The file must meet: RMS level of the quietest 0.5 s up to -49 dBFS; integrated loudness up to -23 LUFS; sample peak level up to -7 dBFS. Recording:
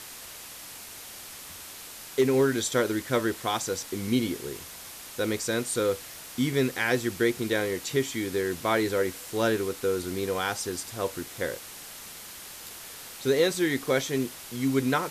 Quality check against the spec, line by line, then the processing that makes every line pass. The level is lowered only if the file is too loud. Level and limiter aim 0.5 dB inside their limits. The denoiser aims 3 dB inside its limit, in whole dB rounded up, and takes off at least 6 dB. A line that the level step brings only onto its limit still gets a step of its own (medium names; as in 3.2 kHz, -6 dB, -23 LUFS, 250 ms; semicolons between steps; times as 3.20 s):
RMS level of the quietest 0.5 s -43 dBFS: fail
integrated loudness -28.0 LUFS: pass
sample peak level -11.5 dBFS: pass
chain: noise reduction 9 dB, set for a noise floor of -43 dBFS